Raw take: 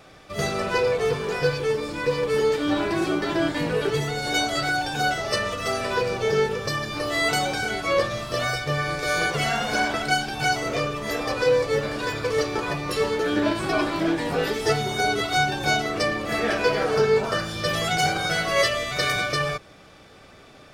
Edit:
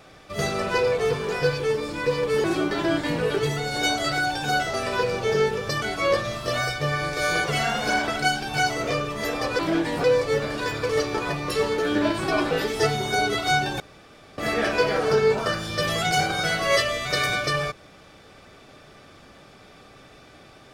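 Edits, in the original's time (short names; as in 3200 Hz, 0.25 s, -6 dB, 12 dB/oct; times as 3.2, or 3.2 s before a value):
2.44–2.95 cut
5.25–5.72 cut
6.8–7.68 cut
13.92–14.37 move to 11.45
15.66–16.24 room tone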